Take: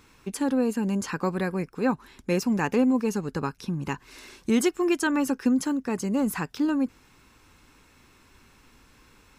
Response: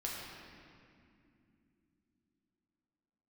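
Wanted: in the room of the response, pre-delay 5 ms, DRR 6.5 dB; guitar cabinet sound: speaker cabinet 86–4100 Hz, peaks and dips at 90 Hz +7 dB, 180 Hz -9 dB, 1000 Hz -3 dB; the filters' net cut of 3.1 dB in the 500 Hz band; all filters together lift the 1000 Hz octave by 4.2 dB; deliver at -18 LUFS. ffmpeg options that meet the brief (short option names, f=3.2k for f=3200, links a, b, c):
-filter_complex "[0:a]equalizer=f=500:t=o:g=-5.5,equalizer=f=1k:t=o:g=8.5,asplit=2[a][b];[1:a]atrim=start_sample=2205,adelay=5[c];[b][c]afir=irnorm=-1:irlink=0,volume=-8.5dB[d];[a][d]amix=inputs=2:normalize=0,highpass=86,equalizer=f=90:t=q:w=4:g=7,equalizer=f=180:t=q:w=4:g=-9,equalizer=f=1k:t=q:w=4:g=-3,lowpass=f=4.1k:w=0.5412,lowpass=f=4.1k:w=1.3066,volume=9.5dB"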